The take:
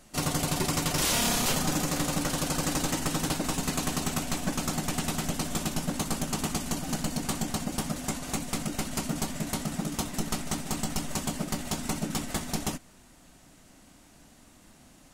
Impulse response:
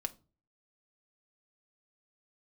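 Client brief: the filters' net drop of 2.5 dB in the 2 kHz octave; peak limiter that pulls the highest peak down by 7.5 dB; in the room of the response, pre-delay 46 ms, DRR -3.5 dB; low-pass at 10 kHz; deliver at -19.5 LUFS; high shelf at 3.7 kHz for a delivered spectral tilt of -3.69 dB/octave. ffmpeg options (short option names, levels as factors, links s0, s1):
-filter_complex "[0:a]lowpass=10000,equalizer=f=2000:t=o:g=-5.5,highshelf=f=3700:g=7.5,alimiter=limit=0.0891:level=0:latency=1,asplit=2[s0][s1];[1:a]atrim=start_sample=2205,adelay=46[s2];[s1][s2]afir=irnorm=-1:irlink=0,volume=1.5[s3];[s0][s3]amix=inputs=2:normalize=0,volume=2"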